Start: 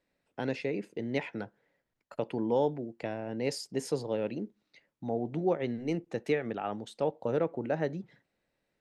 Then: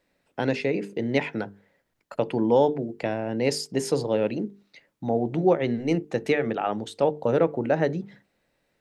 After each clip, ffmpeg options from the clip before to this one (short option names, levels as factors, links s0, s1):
-af "bandreject=f=50:t=h:w=6,bandreject=f=100:t=h:w=6,bandreject=f=150:t=h:w=6,bandreject=f=200:t=h:w=6,bandreject=f=250:t=h:w=6,bandreject=f=300:t=h:w=6,bandreject=f=350:t=h:w=6,bandreject=f=400:t=h:w=6,bandreject=f=450:t=h:w=6,volume=2.66"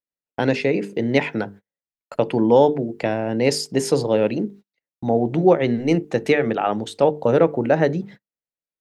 -af "agate=range=0.0141:threshold=0.00631:ratio=16:detection=peak,volume=1.88"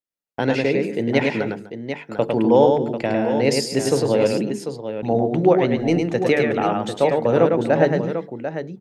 -af "aecho=1:1:104|248|744:0.631|0.133|0.355,volume=0.891"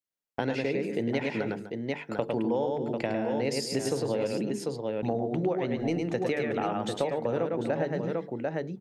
-af "acompressor=threshold=0.0708:ratio=6,volume=0.75"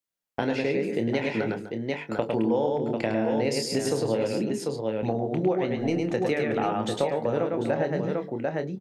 -filter_complex "[0:a]asplit=2[s0][s1];[s1]adelay=27,volume=0.376[s2];[s0][s2]amix=inputs=2:normalize=0,volume=1.33"